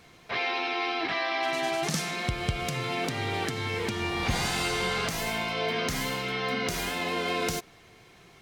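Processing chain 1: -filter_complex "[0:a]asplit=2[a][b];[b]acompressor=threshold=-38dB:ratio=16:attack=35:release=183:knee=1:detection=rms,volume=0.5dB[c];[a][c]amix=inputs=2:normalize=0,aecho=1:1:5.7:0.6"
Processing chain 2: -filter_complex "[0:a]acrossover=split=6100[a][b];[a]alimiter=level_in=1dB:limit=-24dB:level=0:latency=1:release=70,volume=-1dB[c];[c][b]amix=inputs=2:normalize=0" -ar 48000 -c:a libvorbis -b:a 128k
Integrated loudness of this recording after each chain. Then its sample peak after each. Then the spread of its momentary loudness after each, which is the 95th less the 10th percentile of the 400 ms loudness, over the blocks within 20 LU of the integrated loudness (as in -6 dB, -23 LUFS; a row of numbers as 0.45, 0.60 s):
-25.0, -32.5 LUFS; -10.0, -18.5 dBFS; 4, 2 LU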